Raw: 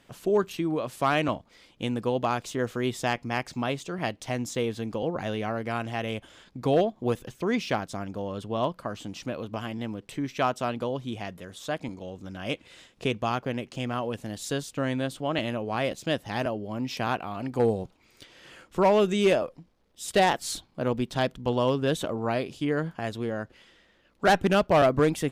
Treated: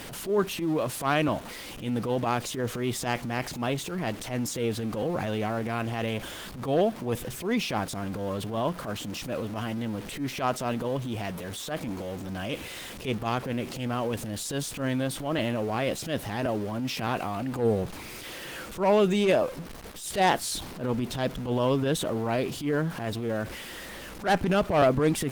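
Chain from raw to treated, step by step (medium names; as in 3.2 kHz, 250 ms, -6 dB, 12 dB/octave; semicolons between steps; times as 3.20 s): jump at every zero crossing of -39 dBFS; in parallel at -3 dB: compression 16:1, threshold -36 dBFS, peak gain reduction 20 dB; on the sum: transient shaper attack -12 dB, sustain +3 dB; Opus 24 kbps 48 kHz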